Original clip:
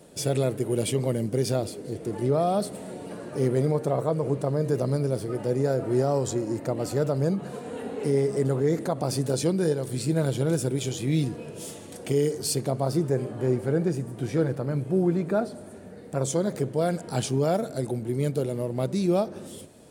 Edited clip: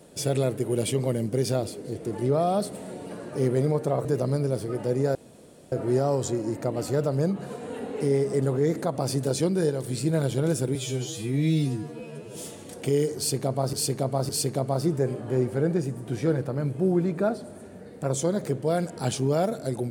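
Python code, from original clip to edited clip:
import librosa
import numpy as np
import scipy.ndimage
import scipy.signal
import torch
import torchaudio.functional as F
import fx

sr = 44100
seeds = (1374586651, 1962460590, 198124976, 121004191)

y = fx.edit(x, sr, fx.cut(start_s=4.05, length_s=0.6),
    fx.insert_room_tone(at_s=5.75, length_s=0.57),
    fx.stretch_span(start_s=10.78, length_s=0.8, factor=2.0),
    fx.repeat(start_s=12.4, length_s=0.56, count=3), tone=tone)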